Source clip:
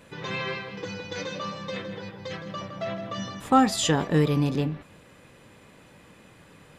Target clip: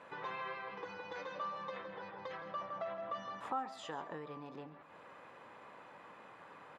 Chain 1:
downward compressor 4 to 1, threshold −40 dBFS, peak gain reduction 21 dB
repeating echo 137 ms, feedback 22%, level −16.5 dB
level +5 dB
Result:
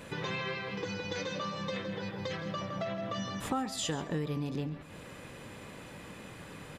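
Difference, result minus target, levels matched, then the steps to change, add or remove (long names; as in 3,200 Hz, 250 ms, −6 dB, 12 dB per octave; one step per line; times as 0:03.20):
1,000 Hz band −5.5 dB
add after downward compressor: resonant band-pass 990 Hz, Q 1.6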